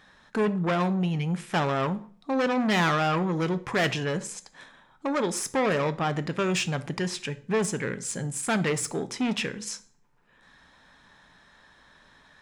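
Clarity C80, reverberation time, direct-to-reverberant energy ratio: 22.0 dB, 0.45 s, 12.0 dB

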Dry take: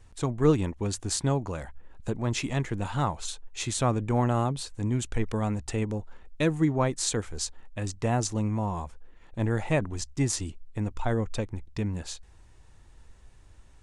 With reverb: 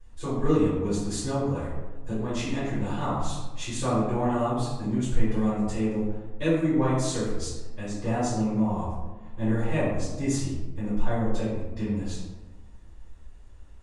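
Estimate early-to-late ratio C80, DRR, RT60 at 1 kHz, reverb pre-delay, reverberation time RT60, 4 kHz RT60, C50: 3.0 dB, -14.0 dB, 1.1 s, 3 ms, 1.2 s, 0.60 s, 0.0 dB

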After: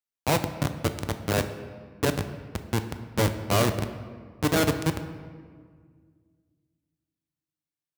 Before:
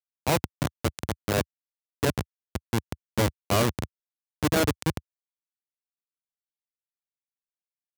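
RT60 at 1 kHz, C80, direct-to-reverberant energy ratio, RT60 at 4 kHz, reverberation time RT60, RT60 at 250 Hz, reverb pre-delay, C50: 1.7 s, 11.5 dB, 8.0 dB, 1.1 s, 1.9 s, 2.5 s, 7 ms, 10.0 dB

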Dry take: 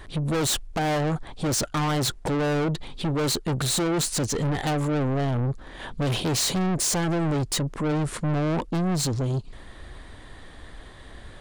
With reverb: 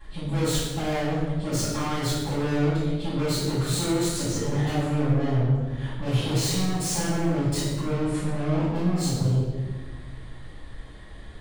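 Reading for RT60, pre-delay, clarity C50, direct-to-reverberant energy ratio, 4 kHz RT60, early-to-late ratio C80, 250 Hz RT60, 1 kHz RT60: 1.3 s, 4 ms, -1.0 dB, -12.0 dB, 0.95 s, 2.0 dB, 2.0 s, 1.1 s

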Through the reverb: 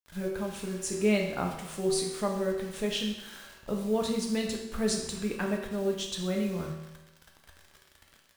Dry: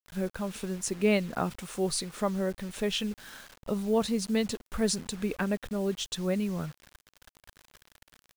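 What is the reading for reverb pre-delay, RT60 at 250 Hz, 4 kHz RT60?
5 ms, 0.95 s, 0.95 s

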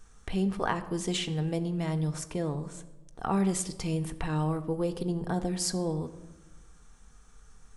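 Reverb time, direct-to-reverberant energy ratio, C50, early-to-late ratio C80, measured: 1.1 s, 7.5 dB, 14.5 dB, 16.5 dB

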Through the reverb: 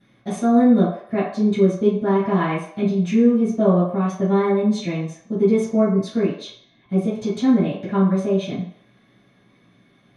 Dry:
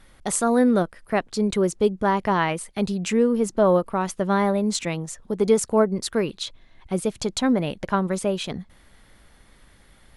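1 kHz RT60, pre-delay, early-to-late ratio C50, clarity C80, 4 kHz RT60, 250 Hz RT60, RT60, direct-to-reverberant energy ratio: 0.65 s, 3 ms, 3.5 dB, 8.0 dB, 0.60 s, 0.40 s, 0.60 s, -14.0 dB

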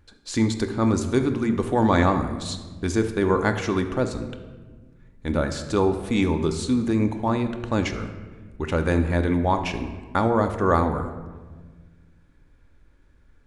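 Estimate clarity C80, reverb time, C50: 11.0 dB, 1.4 s, 9.0 dB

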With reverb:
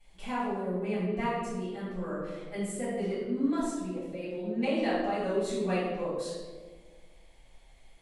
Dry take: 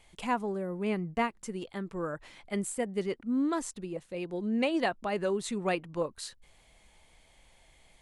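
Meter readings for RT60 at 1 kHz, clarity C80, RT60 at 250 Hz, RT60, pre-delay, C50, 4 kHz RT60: 1.2 s, 1.5 dB, 1.8 s, 1.5 s, 3 ms, -1.0 dB, 0.80 s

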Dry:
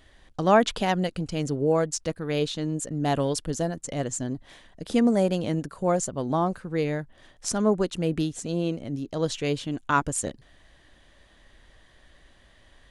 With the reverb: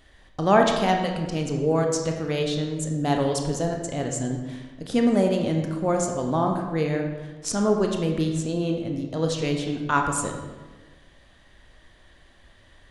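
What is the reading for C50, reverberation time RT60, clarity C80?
4.5 dB, 1.3 s, 6.5 dB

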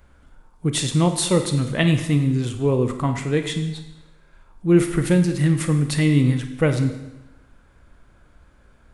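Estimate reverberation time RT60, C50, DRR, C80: 1.0 s, 8.0 dB, 6.5 dB, 10.5 dB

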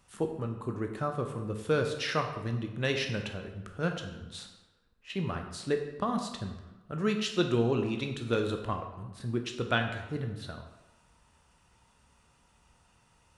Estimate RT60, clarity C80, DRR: 1.1 s, 9.0 dB, 4.0 dB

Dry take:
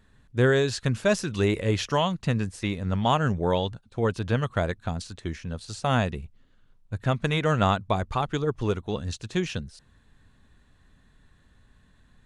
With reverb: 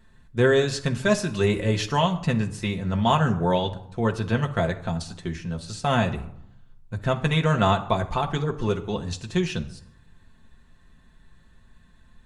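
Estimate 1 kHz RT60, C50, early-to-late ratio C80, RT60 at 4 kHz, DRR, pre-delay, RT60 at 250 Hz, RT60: 0.80 s, 14.0 dB, 17.5 dB, 0.45 s, 2.0 dB, 5 ms, 0.95 s, 0.75 s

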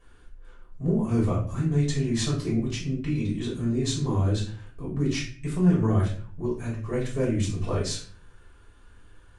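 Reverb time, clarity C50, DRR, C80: 0.45 s, 5.5 dB, -7.5 dB, 10.5 dB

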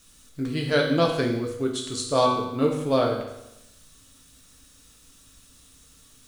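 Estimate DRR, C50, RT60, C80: -0.5 dB, 4.5 dB, 0.90 s, 7.0 dB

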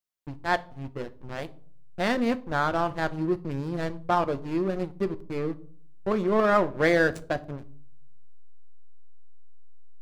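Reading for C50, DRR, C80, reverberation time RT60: 19.5 dB, 11.0 dB, 24.5 dB, 0.55 s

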